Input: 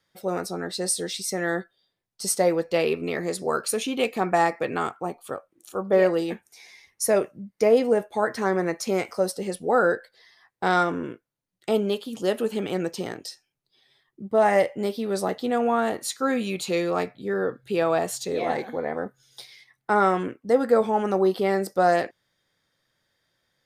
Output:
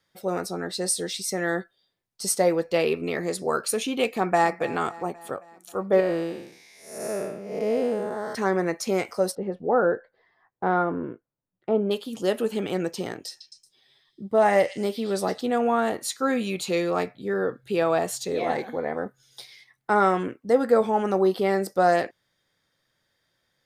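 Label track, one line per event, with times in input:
4.120000	4.540000	echo throw 0.27 s, feedback 60%, level -17.5 dB
6.000000	8.350000	time blur width 0.29 s
9.350000	11.910000	LPF 1200 Hz
13.290000	15.410000	delay with a stepping band-pass 0.114 s, band-pass from 3700 Hz, each repeat 0.7 oct, level -3 dB

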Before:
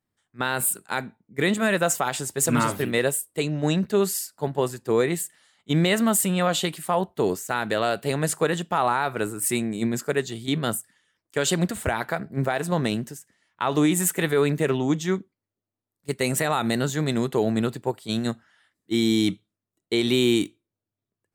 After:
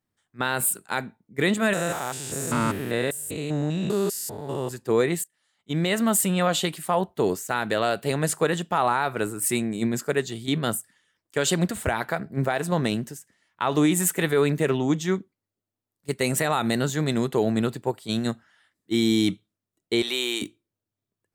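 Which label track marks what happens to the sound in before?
1.730000	4.710000	stepped spectrum every 0.2 s
5.240000	6.180000	fade in, from -23.5 dB
20.020000	20.420000	HPF 660 Hz

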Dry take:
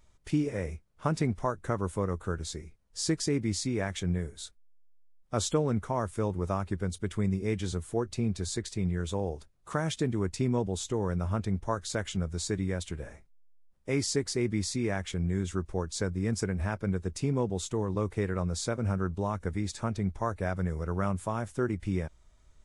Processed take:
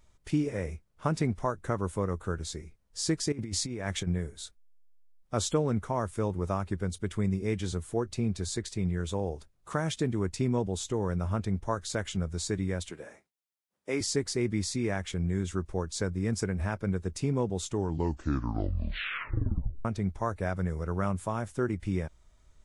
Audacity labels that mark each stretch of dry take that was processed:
3.320000	4.070000	negative-ratio compressor -33 dBFS, ratio -0.5
12.900000	14.010000	HPF 260 Hz
17.630000	17.630000	tape stop 2.22 s

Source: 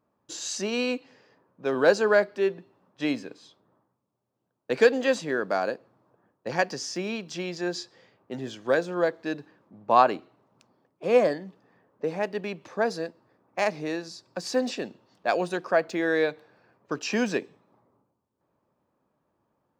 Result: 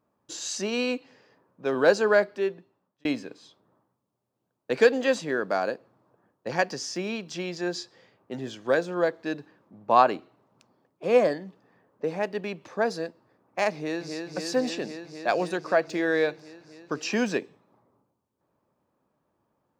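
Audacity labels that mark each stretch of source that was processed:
2.260000	3.050000	fade out linear
13.740000	14.260000	echo throw 0.26 s, feedback 85%, level -4.5 dB

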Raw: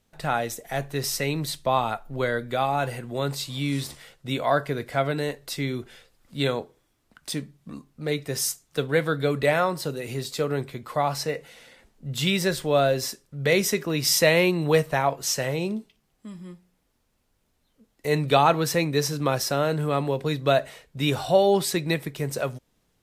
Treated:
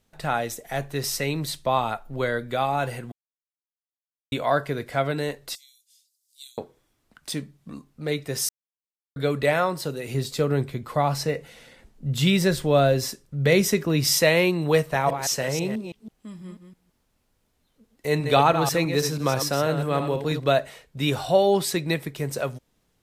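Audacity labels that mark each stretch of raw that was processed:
3.120000	4.320000	mute
5.550000	6.580000	inverse Chebyshev high-pass stop band from 900 Hz, stop band 80 dB
8.490000	9.160000	mute
10.140000	14.190000	low shelf 270 Hz +8 dB
14.780000	20.490000	reverse delay 0.163 s, level -8 dB

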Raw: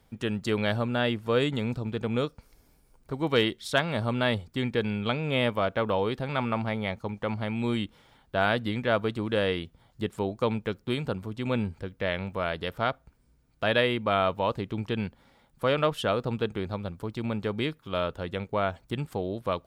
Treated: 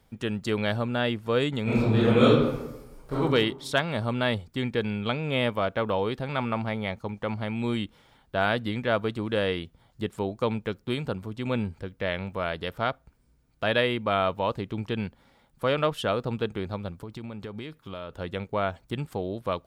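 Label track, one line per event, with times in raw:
1.630000	3.210000	reverb throw, RT60 1 s, DRR -11 dB
16.940000	18.200000	compressor, threshold -33 dBFS

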